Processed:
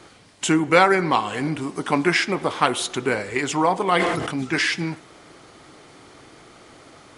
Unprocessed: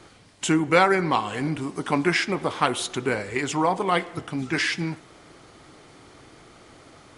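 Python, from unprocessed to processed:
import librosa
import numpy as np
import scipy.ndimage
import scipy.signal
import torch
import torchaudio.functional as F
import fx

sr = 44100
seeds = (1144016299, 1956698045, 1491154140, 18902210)

y = fx.low_shelf(x, sr, hz=120.0, db=-6.5)
y = fx.sustainer(y, sr, db_per_s=35.0, at=(3.98, 4.43), fade=0.02)
y = y * librosa.db_to_amplitude(3.0)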